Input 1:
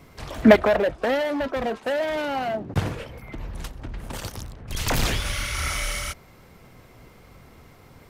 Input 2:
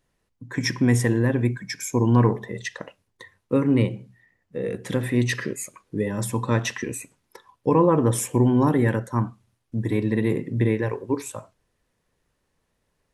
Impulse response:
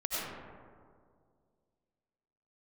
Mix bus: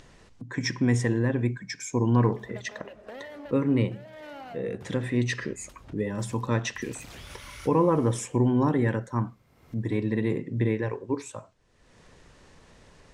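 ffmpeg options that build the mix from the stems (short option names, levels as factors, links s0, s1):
-filter_complex "[0:a]highpass=47,acompressor=threshold=0.02:ratio=2,adelay=2050,volume=0.126,asplit=2[s0][s1];[s1]volume=0.15[s2];[1:a]lowpass=f=8000:w=0.5412,lowpass=f=8000:w=1.3066,volume=0.631,asplit=2[s3][s4];[s4]apad=whole_len=447386[s5];[s0][s5]sidechaincompress=threshold=0.0447:ratio=8:attack=16:release=316[s6];[2:a]atrim=start_sample=2205[s7];[s2][s7]afir=irnorm=-1:irlink=0[s8];[s6][s3][s8]amix=inputs=3:normalize=0,acompressor=mode=upward:threshold=0.02:ratio=2.5"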